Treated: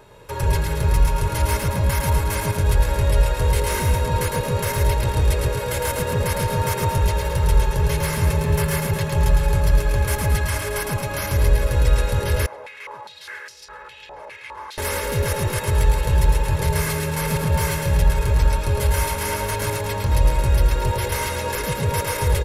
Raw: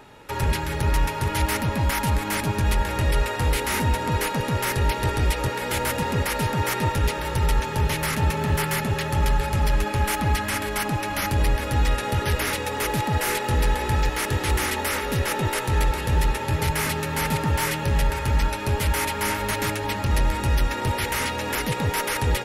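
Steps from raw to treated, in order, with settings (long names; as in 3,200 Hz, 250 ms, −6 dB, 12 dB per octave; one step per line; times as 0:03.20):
parametric band 2,500 Hz −5 dB 2 octaves
comb filter 1.9 ms, depth 57%
loudspeakers that aren't time-aligned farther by 37 metres −4 dB, 76 metres −10 dB
0:12.46–0:14.78: band-pass on a step sequencer 4.9 Hz 750–5,200 Hz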